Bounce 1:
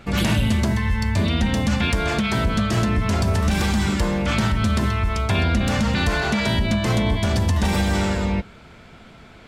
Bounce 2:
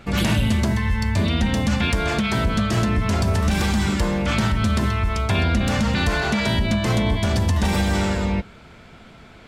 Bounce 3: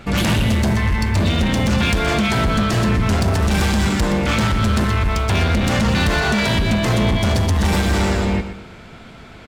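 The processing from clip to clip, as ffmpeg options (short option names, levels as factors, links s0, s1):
-af anull
-af "volume=8.91,asoftclip=hard,volume=0.112,aecho=1:1:120|240|360|480:0.282|0.104|0.0386|0.0143,volume=1.78"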